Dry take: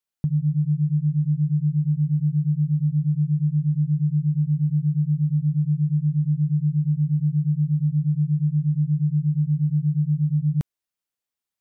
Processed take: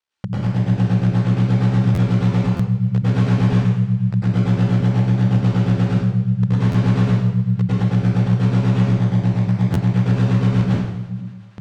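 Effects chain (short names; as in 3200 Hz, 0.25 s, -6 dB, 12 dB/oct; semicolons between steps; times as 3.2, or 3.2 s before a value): reverse delay 0.584 s, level -9 dB; low shelf 280 Hz -11 dB; notches 50/100/150 Hz; ring modulator 34 Hz; in parallel at -9 dB: wrapped overs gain 26.5 dB; on the sum: air absorption 120 m; thinning echo 0.241 s, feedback 83%, high-pass 420 Hz, level -23 dB; plate-style reverb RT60 0.94 s, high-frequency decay 0.95×, pre-delay 90 ms, DRR -9 dB; stuck buffer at 1.94/2.56/6.71/9.73, samples 512, times 2; gain +8.5 dB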